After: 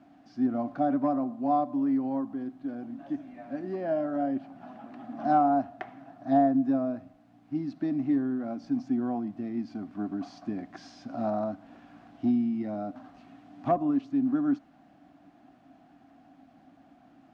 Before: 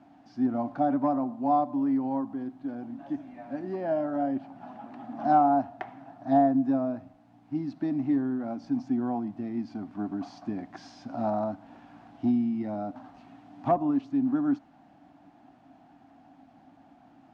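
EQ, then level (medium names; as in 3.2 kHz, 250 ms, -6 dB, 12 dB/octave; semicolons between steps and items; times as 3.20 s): peaking EQ 110 Hz -3 dB 0.77 oct; peaking EQ 890 Hz -10 dB 0.24 oct; 0.0 dB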